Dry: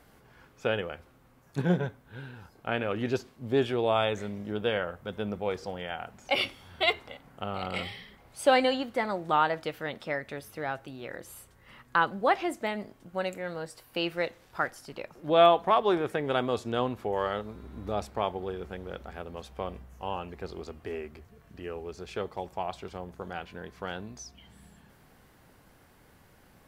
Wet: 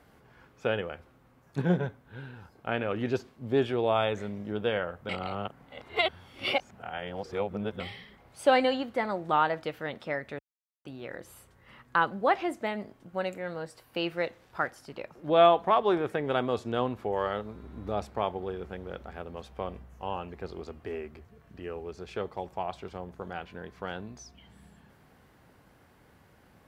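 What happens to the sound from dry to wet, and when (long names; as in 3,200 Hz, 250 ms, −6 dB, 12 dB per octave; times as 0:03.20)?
0:05.09–0:07.80: reverse
0:10.39–0:10.85: silence
whole clip: high-pass filter 44 Hz; high-shelf EQ 4,400 Hz −7 dB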